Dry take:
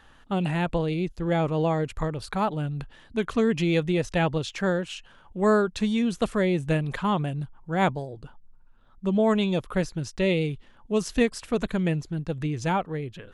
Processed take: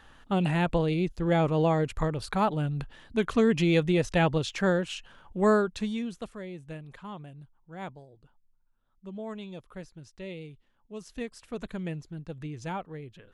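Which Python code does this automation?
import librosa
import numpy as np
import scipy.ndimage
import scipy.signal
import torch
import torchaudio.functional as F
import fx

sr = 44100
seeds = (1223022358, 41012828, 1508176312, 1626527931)

y = fx.gain(x, sr, db=fx.line((5.38, 0.0), (5.97, -7.5), (6.38, -16.5), (10.96, -16.5), (11.69, -9.5)))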